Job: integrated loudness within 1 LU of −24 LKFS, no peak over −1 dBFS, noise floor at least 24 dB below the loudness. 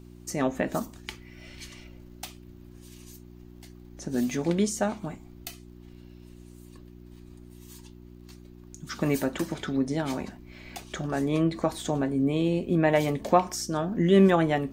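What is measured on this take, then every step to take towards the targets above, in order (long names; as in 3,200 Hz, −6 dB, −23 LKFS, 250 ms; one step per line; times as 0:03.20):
crackle rate 38 per second; mains hum 60 Hz; hum harmonics up to 360 Hz; level of the hum −45 dBFS; integrated loudness −26.5 LKFS; sample peak −7.0 dBFS; target loudness −24.0 LKFS
→ click removal
hum removal 60 Hz, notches 6
level +2.5 dB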